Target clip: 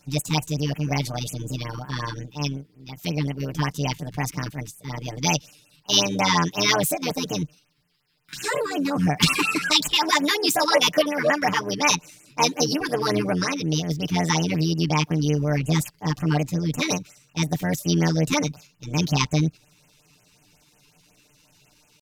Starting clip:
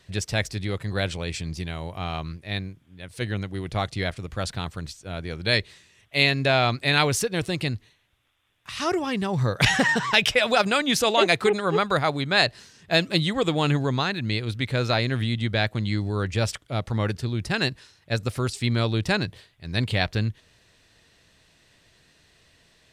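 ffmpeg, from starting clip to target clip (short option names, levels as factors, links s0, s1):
-af "asetrate=45938,aresample=44100,tremolo=f=61:d=0.71,asetrate=60591,aresample=44100,atempo=0.727827,aecho=1:1:6.7:0.87,afftfilt=real='re*(1-between(b*sr/1024,570*pow(4600/570,0.5+0.5*sin(2*PI*5.5*pts/sr))/1.41,570*pow(4600/570,0.5+0.5*sin(2*PI*5.5*pts/sr))*1.41))':imag='im*(1-between(b*sr/1024,570*pow(4600/570,0.5+0.5*sin(2*PI*5.5*pts/sr))/1.41,570*pow(4600/570,0.5+0.5*sin(2*PI*5.5*pts/sr))*1.41))':win_size=1024:overlap=0.75,volume=1.33"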